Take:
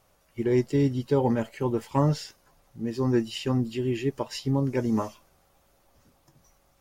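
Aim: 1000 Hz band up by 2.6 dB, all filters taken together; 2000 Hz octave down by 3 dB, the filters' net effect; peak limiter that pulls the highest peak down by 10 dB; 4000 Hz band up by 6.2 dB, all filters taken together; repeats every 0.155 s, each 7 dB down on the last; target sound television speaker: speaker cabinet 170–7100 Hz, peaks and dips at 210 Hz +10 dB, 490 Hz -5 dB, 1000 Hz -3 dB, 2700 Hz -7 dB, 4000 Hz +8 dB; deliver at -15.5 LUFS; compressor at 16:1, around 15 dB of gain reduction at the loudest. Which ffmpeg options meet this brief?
-af "equalizer=f=1k:t=o:g=6,equalizer=f=2k:t=o:g=-5.5,equalizer=f=4k:t=o:g=7,acompressor=threshold=-32dB:ratio=16,alimiter=level_in=8dB:limit=-24dB:level=0:latency=1,volume=-8dB,highpass=f=170:w=0.5412,highpass=f=170:w=1.3066,equalizer=f=210:t=q:w=4:g=10,equalizer=f=490:t=q:w=4:g=-5,equalizer=f=1k:t=q:w=4:g=-3,equalizer=f=2.7k:t=q:w=4:g=-7,equalizer=f=4k:t=q:w=4:g=8,lowpass=f=7.1k:w=0.5412,lowpass=f=7.1k:w=1.3066,aecho=1:1:155|310|465|620|775:0.447|0.201|0.0905|0.0407|0.0183,volume=23.5dB"

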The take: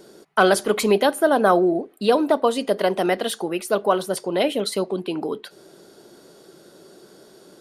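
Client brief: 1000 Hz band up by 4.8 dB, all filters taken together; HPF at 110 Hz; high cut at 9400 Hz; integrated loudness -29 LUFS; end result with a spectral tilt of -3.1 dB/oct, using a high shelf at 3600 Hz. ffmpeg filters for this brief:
-af "highpass=110,lowpass=9.4k,equalizer=f=1k:t=o:g=7,highshelf=f=3.6k:g=-5,volume=-10dB"

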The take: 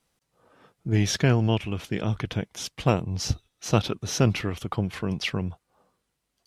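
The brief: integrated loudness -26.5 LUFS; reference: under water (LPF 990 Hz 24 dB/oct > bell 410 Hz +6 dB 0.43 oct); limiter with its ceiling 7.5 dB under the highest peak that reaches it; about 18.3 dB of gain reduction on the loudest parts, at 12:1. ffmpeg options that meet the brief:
-af "acompressor=threshold=-34dB:ratio=12,alimiter=level_in=4.5dB:limit=-24dB:level=0:latency=1,volume=-4.5dB,lowpass=f=990:w=0.5412,lowpass=f=990:w=1.3066,equalizer=f=410:t=o:w=0.43:g=6,volume=16dB"

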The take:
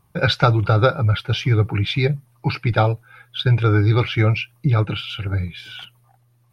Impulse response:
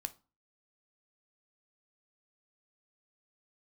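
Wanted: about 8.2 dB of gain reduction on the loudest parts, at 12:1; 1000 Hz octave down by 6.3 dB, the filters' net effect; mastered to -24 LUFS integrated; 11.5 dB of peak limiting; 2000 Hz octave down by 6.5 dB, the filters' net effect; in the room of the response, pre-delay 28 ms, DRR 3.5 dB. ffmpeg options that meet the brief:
-filter_complex "[0:a]equalizer=f=1k:t=o:g=-7,equalizer=f=2k:t=o:g=-6.5,acompressor=threshold=-20dB:ratio=12,alimiter=limit=-22.5dB:level=0:latency=1,asplit=2[a][b];[1:a]atrim=start_sample=2205,adelay=28[c];[b][c]afir=irnorm=-1:irlink=0,volume=-1.5dB[d];[a][d]amix=inputs=2:normalize=0,volume=5dB"

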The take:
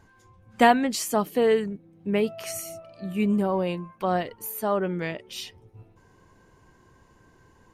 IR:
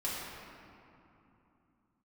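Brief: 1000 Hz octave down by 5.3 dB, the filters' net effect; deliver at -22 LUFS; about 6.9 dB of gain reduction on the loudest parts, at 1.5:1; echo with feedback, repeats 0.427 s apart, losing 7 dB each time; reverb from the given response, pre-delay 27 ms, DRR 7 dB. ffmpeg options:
-filter_complex "[0:a]equalizer=f=1k:t=o:g=-8.5,acompressor=threshold=-34dB:ratio=1.5,aecho=1:1:427|854|1281|1708|2135:0.447|0.201|0.0905|0.0407|0.0183,asplit=2[a][b];[1:a]atrim=start_sample=2205,adelay=27[c];[b][c]afir=irnorm=-1:irlink=0,volume=-12dB[d];[a][d]amix=inputs=2:normalize=0,volume=8.5dB"

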